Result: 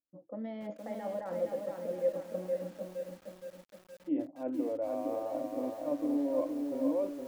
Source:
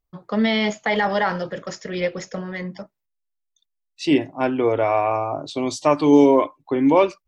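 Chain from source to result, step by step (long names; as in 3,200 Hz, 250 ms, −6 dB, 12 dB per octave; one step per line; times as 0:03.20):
low-pass that shuts in the quiet parts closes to 420 Hz, open at −15.5 dBFS
reversed playback
downward compressor 16 to 1, threshold −22 dBFS, peak gain reduction 15 dB
reversed playback
pair of resonant band-passes 400 Hz, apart 0.81 octaves
feedback echo at a low word length 467 ms, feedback 55%, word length 9 bits, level −4 dB
level −1.5 dB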